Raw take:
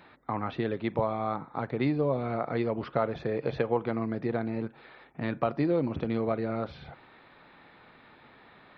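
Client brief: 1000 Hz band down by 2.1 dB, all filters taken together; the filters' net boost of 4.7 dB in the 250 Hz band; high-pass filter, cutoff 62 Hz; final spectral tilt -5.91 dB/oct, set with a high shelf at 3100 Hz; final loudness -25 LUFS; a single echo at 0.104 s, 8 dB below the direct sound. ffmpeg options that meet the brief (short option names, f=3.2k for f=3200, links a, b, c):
-af "highpass=62,equalizer=f=250:t=o:g=6,equalizer=f=1k:t=o:g=-4,highshelf=f=3.1k:g=4.5,aecho=1:1:104:0.398,volume=3dB"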